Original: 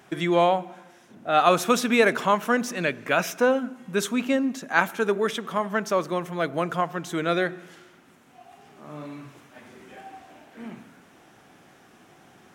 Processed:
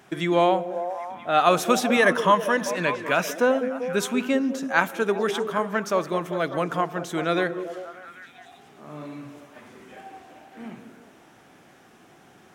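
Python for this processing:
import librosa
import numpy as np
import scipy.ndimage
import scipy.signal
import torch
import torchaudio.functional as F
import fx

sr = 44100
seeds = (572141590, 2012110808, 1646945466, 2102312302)

y = fx.ripple_eq(x, sr, per_octave=1.2, db=10, at=(1.96, 2.66))
y = fx.echo_stepped(y, sr, ms=196, hz=360.0, octaves=0.7, feedback_pct=70, wet_db=-5.5)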